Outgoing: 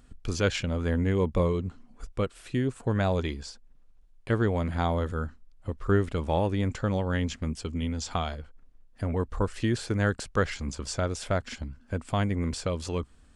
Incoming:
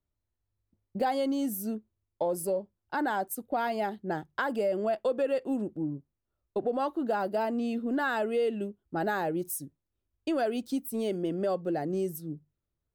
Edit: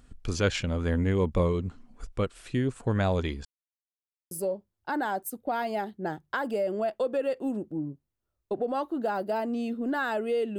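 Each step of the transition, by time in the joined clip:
outgoing
3.45–4.31 mute
4.31 switch to incoming from 2.36 s

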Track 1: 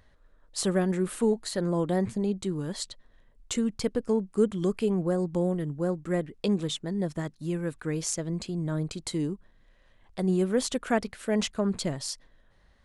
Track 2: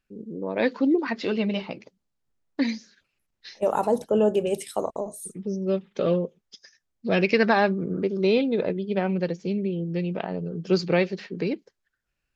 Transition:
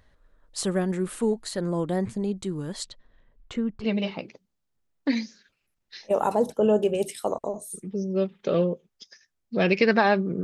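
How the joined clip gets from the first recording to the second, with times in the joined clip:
track 1
2.84–3.86 LPF 6800 Hz -> 1600 Hz
3.83 switch to track 2 from 1.35 s, crossfade 0.06 s

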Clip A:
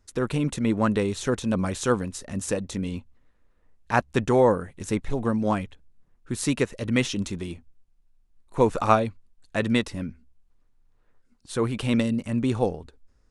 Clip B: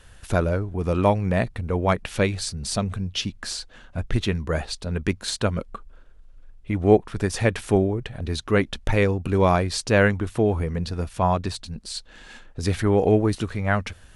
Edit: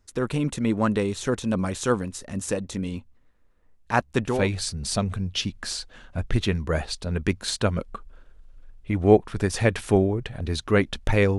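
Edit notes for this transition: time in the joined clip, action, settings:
clip A
4.36 switch to clip B from 2.16 s, crossfade 0.26 s

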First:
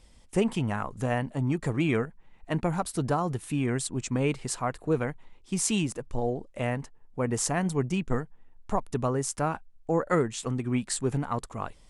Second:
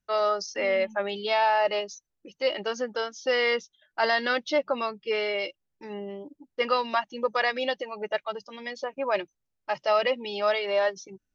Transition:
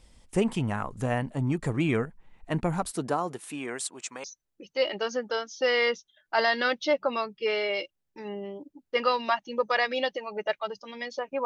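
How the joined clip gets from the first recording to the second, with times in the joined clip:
first
2.9–4.24 HPF 190 Hz -> 870 Hz
4.24 switch to second from 1.89 s

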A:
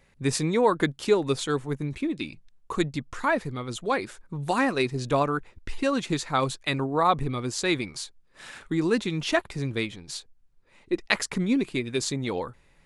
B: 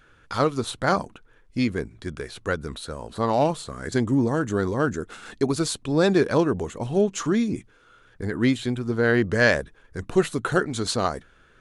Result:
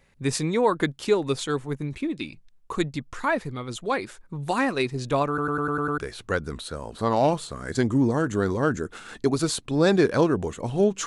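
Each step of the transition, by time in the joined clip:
A
5.28 stutter in place 0.10 s, 7 plays
5.98 switch to B from 2.15 s

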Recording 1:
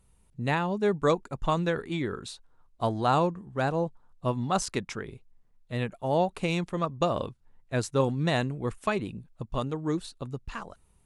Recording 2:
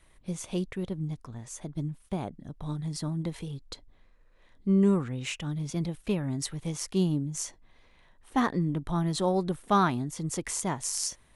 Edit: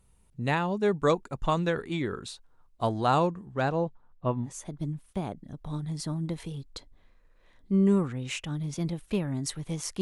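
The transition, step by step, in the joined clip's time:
recording 1
3.52–4.51 LPF 8200 Hz -> 1500 Hz
4.46 switch to recording 2 from 1.42 s, crossfade 0.10 s

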